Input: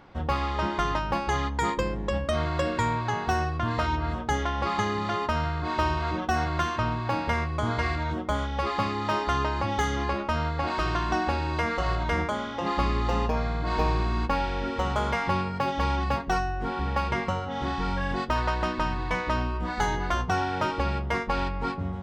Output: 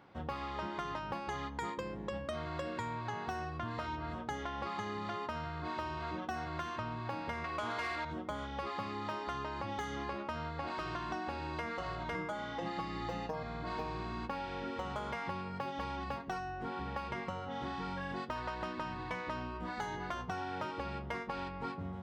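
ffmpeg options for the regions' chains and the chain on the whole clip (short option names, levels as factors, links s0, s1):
-filter_complex "[0:a]asettb=1/sr,asplit=3[s0][s1][s2];[s0]atrim=end=7.444[s3];[s1]atrim=start=7.44:end=8.05,asetpts=PTS-STARTPTS,afade=t=in:d=0.004:c=qsin,afade=t=out:st=0.606:d=0.004:c=qsin,equalizer=f=140:t=o:w=0.29:g=-14.5,asplit=2[s4][s5];[s5]highpass=f=720:p=1,volume=7.08,asoftclip=type=tanh:threshold=0.188[s6];[s4][s6]amix=inputs=2:normalize=0,lowpass=f=7100:p=1,volume=0.501[s7];[s2]atrim=start=8.046[s8];[s3][s7]acrossfade=d=0.004:c1=hsin:c2=qsin[s9];[s9][s8]acrossfade=d=0.004:c1=qsin:c2=hsin,asettb=1/sr,asplit=3[s10][s11][s12];[s10]atrim=end=12.144[s13];[s11]atrim=start=12.14:end=13.43,asetpts=PTS-STARTPTS,afade=t=in:d=0.004:c=qsin,afade=t=out:st=1.286:d=0.004:c=qsin,bandreject=f=2400:w=26,aecho=1:1:6.2:0.93,atrim=end_sample=56889,aeval=exprs='val(0)+0.0126*(sin(2*PI*60*n/s)+sin(2*PI*2*60*n/s)/2+sin(2*PI*3*60*n/s)/3+sin(2*PI*4*60*n/s)/4+sin(2*PI*5*60*n/s)/5)':c=same[s14];[s12]atrim=start=13.426[s15];[s13][s14]acrossfade=d=0.004:c1=hsin:c2=qsin[s16];[s16][s15]acrossfade=d=0.004:c1=qsin:c2=hsin,highpass=100,equalizer=f=6500:w=1.5:g=-2.5,acompressor=threshold=0.0398:ratio=6,volume=0.422"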